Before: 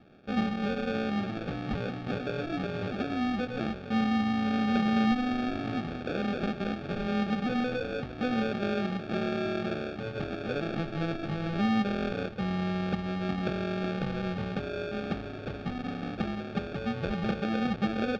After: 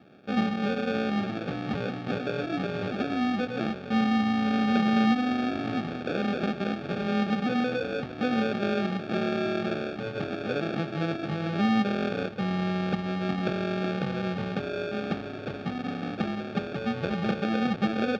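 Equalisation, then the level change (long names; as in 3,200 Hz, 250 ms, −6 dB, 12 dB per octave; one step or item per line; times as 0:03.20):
high-pass filter 120 Hz 12 dB per octave
+3.0 dB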